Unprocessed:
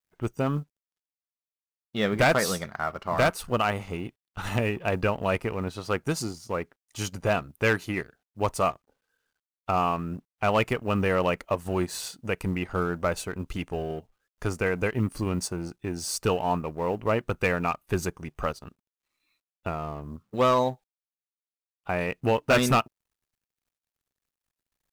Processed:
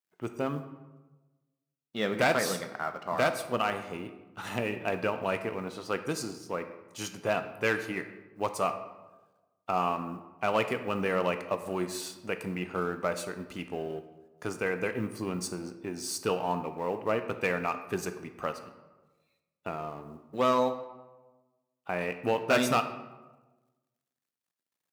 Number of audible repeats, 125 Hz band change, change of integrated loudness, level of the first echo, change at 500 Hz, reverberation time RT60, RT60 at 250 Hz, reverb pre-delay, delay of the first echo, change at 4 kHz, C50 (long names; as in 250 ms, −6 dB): no echo audible, −10.0 dB, −4.0 dB, no echo audible, −3.5 dB, 1.2 s, 1.3 s, 13 ms, no echo audible, −3.5 dB, 10.5 dB